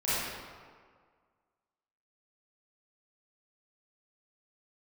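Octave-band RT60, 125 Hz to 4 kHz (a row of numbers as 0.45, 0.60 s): 1.6, 1.7, 1.8, 1.8, 1.4, 1.1 s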